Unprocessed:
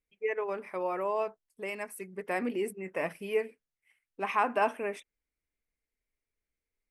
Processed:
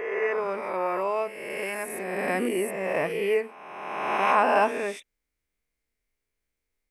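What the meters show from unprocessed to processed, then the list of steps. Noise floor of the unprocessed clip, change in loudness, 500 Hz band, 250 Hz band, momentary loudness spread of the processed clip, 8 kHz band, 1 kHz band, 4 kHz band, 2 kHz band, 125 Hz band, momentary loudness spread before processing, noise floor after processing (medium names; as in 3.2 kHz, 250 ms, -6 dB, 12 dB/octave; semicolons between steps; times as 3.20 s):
under -85 dBFS, +6.5 dB, +6.5 dB, +5.5 dB, 11 LU, +9.5 dB, +7.5 dB, +8.5 dB, +7.5 dB, +7.0 dB, 11 LU, -83 dBFS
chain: reverse spectral sustain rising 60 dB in 1.65 s; trim +2.5 dB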